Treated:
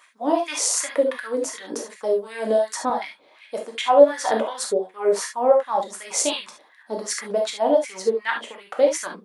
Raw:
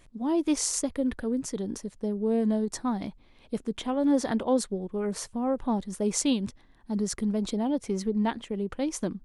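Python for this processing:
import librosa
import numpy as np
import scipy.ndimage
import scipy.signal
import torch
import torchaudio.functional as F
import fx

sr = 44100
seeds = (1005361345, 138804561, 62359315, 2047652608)

y = fx.filter_lfo_highpass(x, sr, shape='sine', hz=2.7, low_hz=450.0, high_hz=2000.0, q=4.0)
y = fx.rev_gated(y, sr, seeds[0], gate_ms=90, shape='flat', drr_db=1.0)
y = fx.band_squash(y, sr, depth_pct=40, at=(0.8, 2.9))
y = y * librosa.db_to_amplitude(4.5)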